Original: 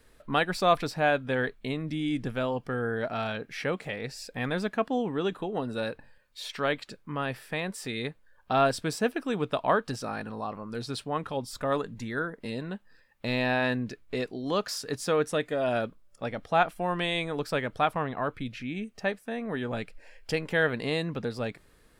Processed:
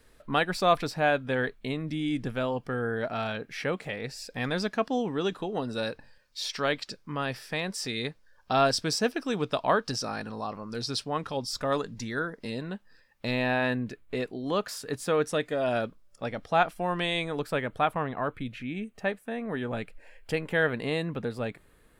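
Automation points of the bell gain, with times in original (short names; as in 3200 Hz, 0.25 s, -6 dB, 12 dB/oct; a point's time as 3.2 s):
bell 5300 Hz 0.68 oct
+1 dB
from 4.3 s +11.5 dB
from 12.45 s +4 dB
from 13.31 s -6 dB
from 15.14 s +3 dB
from 17.42 s -8.5 dB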